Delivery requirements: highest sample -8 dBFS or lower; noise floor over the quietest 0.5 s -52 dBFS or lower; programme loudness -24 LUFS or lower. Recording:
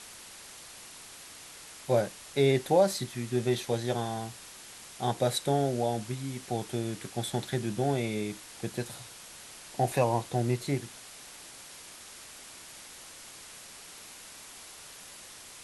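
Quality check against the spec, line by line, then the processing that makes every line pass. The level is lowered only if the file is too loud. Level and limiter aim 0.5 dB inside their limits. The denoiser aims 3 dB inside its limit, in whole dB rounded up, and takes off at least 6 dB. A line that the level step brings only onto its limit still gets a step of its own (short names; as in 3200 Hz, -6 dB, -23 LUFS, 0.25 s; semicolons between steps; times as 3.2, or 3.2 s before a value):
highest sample -12.5 dBFS: OK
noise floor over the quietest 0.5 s -48 dBFS: fail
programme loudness -30.5 LUFS: OK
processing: denoiser 7 dB, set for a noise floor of -48 dBFS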